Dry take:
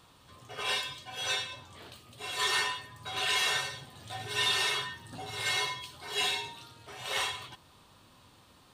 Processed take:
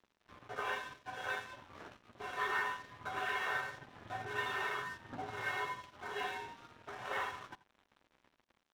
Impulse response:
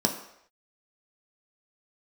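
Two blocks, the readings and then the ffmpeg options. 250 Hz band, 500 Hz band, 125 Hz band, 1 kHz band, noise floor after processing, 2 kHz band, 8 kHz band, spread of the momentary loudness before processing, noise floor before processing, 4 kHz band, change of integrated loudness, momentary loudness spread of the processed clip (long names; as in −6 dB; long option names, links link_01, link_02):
−2.5 dB, −3.0 dB, −7.0 dB, −2.0 dB, −80 dBFS, −4.5 dB, −20.0 dB, 19 LU, −60 dBFS, −18.0 dB, −8.5 dB, 16 LU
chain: -filter_complex "[0:a]acompressor=threshold=-47dB:ratio=1.5,lowpass=frequency=1500:width_type=q:width=1.8,aeval=exprs='sgn(val(0))*max(abs(val(0))-0.00224,0)':channel_layout=same,aecho=1:1:84:0.106,asplit=2[link_01][link_02];[1:a]atrim=start_sample=2205,atrim=end_sample=3969[link_03];[link_02][link_03]afir=irnorm=-1:irlink=0,volume=-24.5dB[link_04];[link_01][link_04]amix=inputs=2:normalize=0,volume=2dB"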